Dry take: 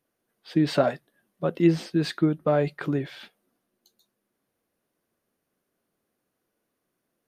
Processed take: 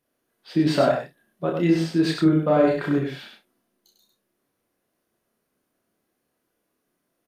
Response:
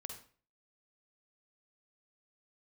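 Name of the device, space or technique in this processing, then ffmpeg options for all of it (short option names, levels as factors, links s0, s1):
slapback doubling: -filter_complex "[0:a]asettb=1/sr,asplit=3[s0][s1][s2];[s0]atrim=end=2.224[s3];[s1]atrim=start=2.22:end=2.89,asetpts=PTS-STARTPTS,afade=t=in:d=0.004:c=qsin,afade=t=out:st=0.666:d=0.004:c=qsin,asplit=2[s4][s5];[s5]adelay=38,volume=0.708[s6];[s4][s6]amix=inputs=2:normalize=0,atrim=end_sample=29547[s7];[s2]atrim=start=2.886[s8];[s3][s7]acrossfade=d=0.004:c1=hsin:c2=qsin[s9];[s9][s8]acrossfade=d=0.004:c1=qsin:c2=hsin,asplit=3[s10][s11][s12];[s11]adelay=28,volume=0.631[s13];[s12]adelay=99,volume=0.596[s14];[s10][s13][s14]amix=inputs=3:normalize=0,aecho=1:1:31|67:0.473|0.15"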